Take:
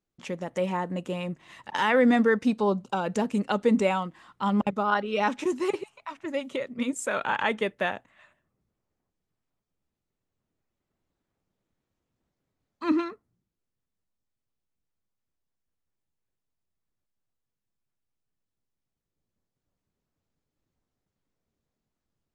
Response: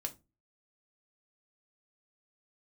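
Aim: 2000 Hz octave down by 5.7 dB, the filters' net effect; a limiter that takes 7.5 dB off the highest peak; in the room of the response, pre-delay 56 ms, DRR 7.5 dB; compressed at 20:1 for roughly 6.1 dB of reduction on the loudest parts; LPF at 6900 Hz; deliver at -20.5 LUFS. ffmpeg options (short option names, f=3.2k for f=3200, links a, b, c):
-filter_complex "[0:a]lowpass=6.9k,equalizer=f=2k:t=o:g=-7.5,acompressor=threshold=-23dB:ratio=20,alimiter=limit=-23dB:level=0:latency=1,asplit=2[a][b];[1:a]atrim=start_sample=2205,adelay=56[c];[b][c]afir=irnorm=-1:irlink=0,volume=-7dB[d];[a][d]amix=inputs=2:normalize=0,volume=12.5dB"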